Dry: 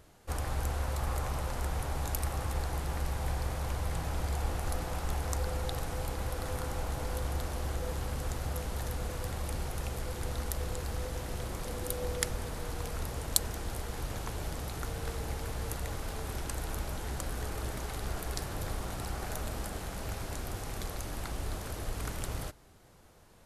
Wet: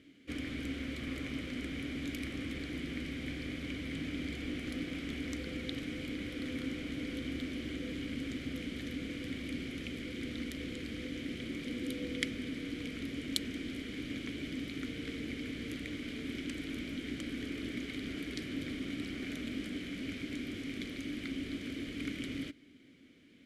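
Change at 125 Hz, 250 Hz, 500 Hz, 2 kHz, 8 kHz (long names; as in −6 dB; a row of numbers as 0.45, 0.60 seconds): −10.0, +8.0, −6.0, +1.5, −13.0 decibels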